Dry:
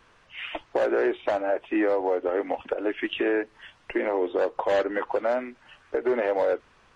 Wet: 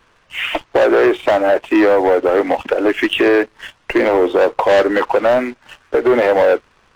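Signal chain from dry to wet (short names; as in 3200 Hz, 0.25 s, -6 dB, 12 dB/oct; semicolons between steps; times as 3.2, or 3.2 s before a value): sample leveller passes 2; gain +7 dB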